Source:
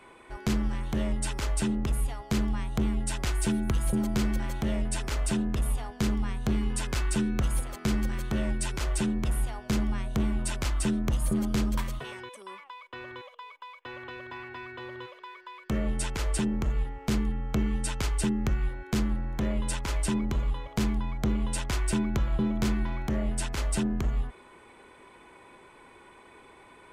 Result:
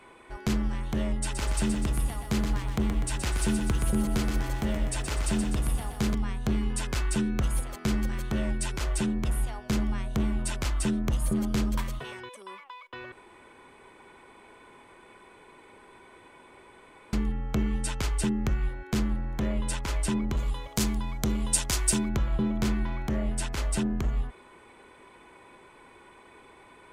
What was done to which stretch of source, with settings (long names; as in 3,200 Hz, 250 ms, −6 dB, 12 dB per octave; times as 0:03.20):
0:01.20–0:06.15: feedback echo at a low word length 124 ms, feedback 55%, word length 10 bits, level −6 dB
0:13.12–0:17.13: fill with room tone
0:20.37–0:22.09: bass and treble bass −1 dB, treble +12 dB